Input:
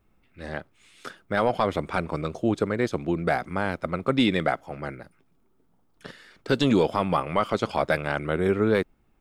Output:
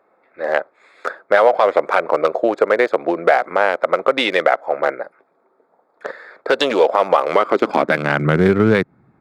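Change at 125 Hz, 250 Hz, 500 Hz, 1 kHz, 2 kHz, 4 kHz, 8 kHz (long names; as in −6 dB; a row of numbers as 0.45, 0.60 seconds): +4.5 dB, +3.5 dB, +10.5 dB, +10.0 dB, +10.5 dB, +7.5 dB, can't be measured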